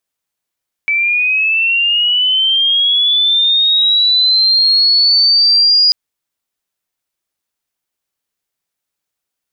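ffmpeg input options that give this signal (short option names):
-f lavfi -i "aevalsrc='pow(10,(-11+4.5*t/5.04)/20)*sin(2*PI*(2300*t+2600*t*t/(2*5.04)))':d=5.04:s=44100"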